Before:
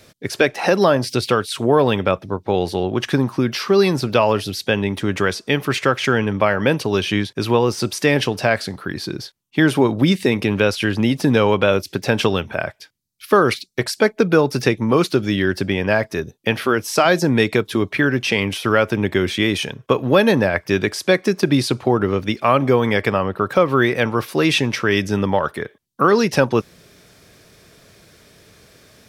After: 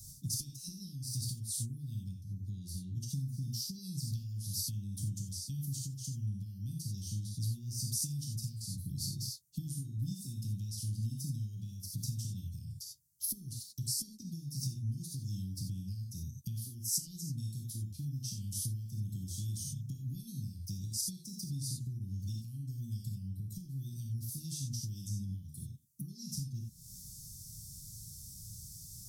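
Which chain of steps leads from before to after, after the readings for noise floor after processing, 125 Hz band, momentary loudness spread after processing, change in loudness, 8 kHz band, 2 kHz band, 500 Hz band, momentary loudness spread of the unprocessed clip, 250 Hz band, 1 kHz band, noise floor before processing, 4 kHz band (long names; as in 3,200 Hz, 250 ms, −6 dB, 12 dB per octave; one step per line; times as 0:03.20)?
−52 dBFS, −12.0 dB, 9 LU, −21.0 dB, −5.5 dB, below −40 dB, below −40 dB, 6 LU, −26.0 dB, below −40 dB, −56 dBFS, −19.5 dB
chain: low-shelf EQ 71 Hz +8.5 dB
reverb whose tail is shaped and stops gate 110 ms flat, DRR −0.5 dB
downward compressor 8 to 1, threshold −27 dBFS, peak gain reduction 21 dB
inverse Chebyshev band-stop filter 480–2,200 Hz, stop band 60 dB
high-shelf EQ 3,600 Hz +8.5 dB
level −3 dB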